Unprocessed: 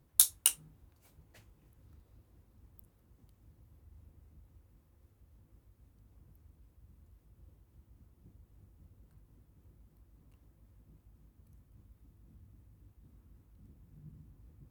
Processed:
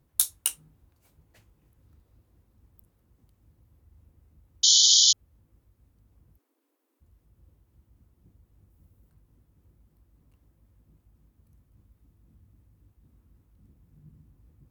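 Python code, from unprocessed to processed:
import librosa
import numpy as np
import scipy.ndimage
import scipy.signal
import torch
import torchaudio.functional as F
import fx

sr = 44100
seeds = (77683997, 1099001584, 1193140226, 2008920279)

y = fx.spec_paint(x, sr, seeds[0], shape='noise', start_s=4.63, length_s=0.5, low_hz=3000.0, high_hz=7100.0, level_db=-18.0)
y = fx.steep_highpass(y, sr, hz=260.0, slope=96, at=(6.37, 7.0), fade=0.02)
y = fx.high_shelf(y, sr, hz=9900.0, db=7.0, at=(8.7, 9.1))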